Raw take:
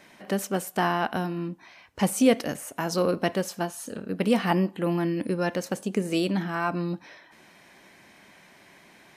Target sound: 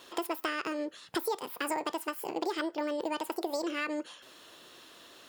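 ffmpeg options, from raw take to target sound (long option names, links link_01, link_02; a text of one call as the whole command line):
ffmpeg -i in.wav -af "asetrate=76440,aresample=44100,acompressor=threshold=-30dB:ratio=6" out.wav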